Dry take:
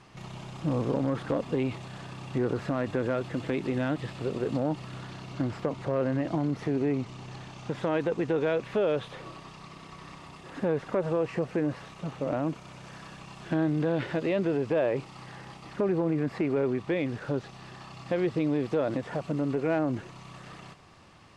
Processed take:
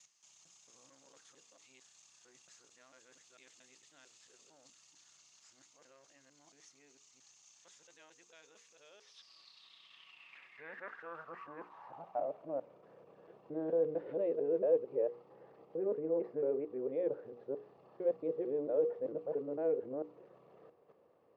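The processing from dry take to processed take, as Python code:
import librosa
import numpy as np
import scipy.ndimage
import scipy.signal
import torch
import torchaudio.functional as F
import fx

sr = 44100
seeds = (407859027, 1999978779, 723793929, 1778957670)

y = fx.local_reverse(x, sr, ms=225.0)
y = fx.filter_sweep_bandpass(y, sr, from_hz=6600.0, to_hz=480.0, start_s=8.86, end_s=12.78, q=6.0)
y = fx.hum_notches(y, sr, base_hz=60, count=8)
y = F.gain(torch.from_numpy(y), 1.5).numpy()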